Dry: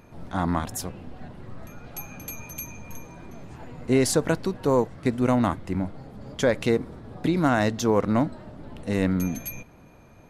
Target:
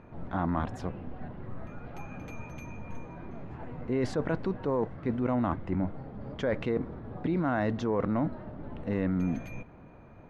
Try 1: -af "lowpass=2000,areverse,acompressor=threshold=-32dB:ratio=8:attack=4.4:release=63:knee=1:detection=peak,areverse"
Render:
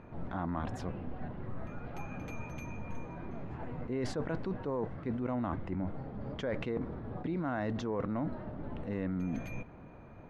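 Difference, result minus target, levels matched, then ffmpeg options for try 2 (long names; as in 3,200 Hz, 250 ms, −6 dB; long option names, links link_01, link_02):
downward compressor: peak gain reduction +6 dB
-af "lowpass=2000,areverse,acompressor=threshold=-25dB:ratio=8:attack=4.4:release=63:knee=1:detection=peak,areverse"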